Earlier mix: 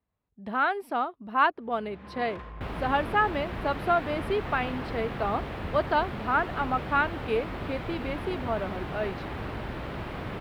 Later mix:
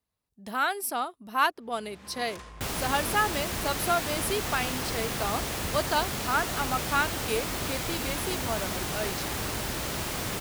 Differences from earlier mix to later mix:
speech -4.5 dB; first sound -5.0 dB; master: remove air absorption 490 m

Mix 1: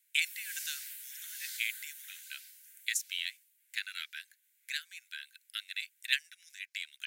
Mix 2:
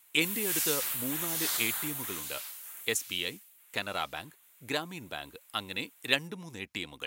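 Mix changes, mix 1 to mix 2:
background +9.5 dB; master: remove rippled Chebyshev high-pass 1500 Hz, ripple 3 dB

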